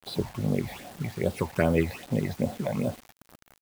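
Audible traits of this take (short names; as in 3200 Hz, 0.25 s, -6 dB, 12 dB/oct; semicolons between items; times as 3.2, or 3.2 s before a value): phasing stages 8, 2.5 Hz, lowest notch 360–2200 Hz; a quantiser's noise floor 8-bit, dither none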